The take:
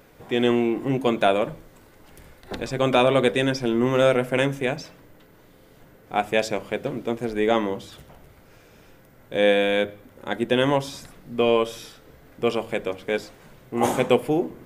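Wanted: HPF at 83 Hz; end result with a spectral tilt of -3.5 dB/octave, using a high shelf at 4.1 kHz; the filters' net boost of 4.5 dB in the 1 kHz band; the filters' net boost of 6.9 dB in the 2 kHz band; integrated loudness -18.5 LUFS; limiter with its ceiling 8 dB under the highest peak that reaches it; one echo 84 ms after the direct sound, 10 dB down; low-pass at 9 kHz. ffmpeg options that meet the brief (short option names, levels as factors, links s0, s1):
-af "highpass=83,lowpass=9000,equalizer=f=1000:t=o:g=4.5,equalizer=f=2000:t=o:g=8.5,highshelf=f=4100:g=-4.5,alimiter=limit=0.398:level=0:latency=1,aecho=1:1:84:0.316,volume=1.68"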